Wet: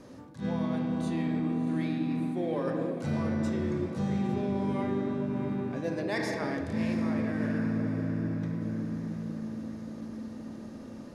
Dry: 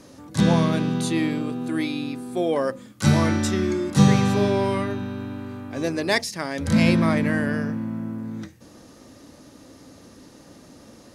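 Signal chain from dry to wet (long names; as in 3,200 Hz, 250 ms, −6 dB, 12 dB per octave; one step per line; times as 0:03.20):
high-shelf EQ 2,800 Hz −10.5 dB
convolution reverb RT60 3.2 s, pre-delay 5 ms, DRR 2 dB
reversed playback
downward compressor 6 to 1, threshold −26 dBFS, peak gain reduction 16 dB
reversed playback
feedback delay with all-pass diffusion 675 ms, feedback 51%, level −10.5 dB
level that may rise only so fast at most 190 dB per second
level −2 dB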